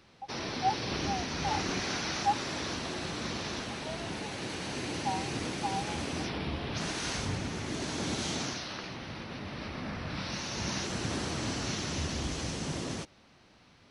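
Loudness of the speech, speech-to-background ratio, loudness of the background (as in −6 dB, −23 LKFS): −37.5 LKFS, −2.5 dB, −35.0 LKFS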